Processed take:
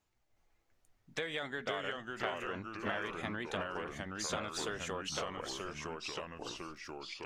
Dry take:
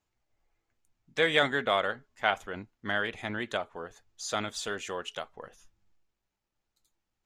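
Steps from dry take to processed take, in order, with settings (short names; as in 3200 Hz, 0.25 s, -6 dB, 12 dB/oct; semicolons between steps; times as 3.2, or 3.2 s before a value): in parallel at -3 dB: limiter -18.5 dBFS, peak gain reduction 9.5 dB; on the sum: compressor 6:1, threshold -33 dBFS, peak gain reduction 15.5 dB; echoes that change speed 0.362 s, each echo -2 st, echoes 3; gain -3.5 dB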